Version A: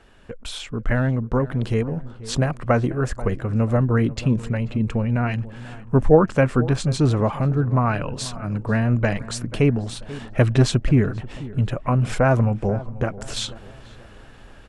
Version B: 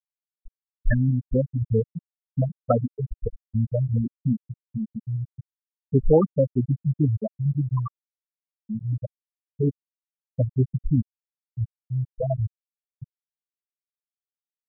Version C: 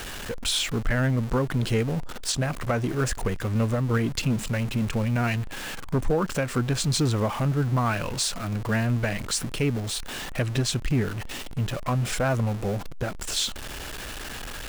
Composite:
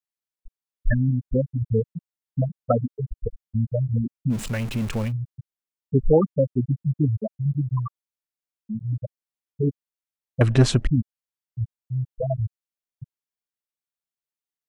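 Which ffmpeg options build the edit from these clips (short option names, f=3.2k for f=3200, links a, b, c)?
-filter_complex "[1:a]asplit=3[a][b][c];[a]atrim=end=4.35[d];[2:a]atrim=start=4.29:end=5.13[e];[b]atrim=start=5.07:end=10.412[f];[0:a]atrim=start=10.408:end=10.872[g];[c]atrim=start=10.868[h];[d][e]acrossfade=d=0.06:c1=tri:c2=tri[i];[i][f]acrossfade=d=0.06:c1=tri:c2=tri[j];[j][g]acrossfade=d=0.004:c1=hsin:c2=hsin[k];[k][h]acrossfade=d=0.004:c1=hsin:c2=hsin"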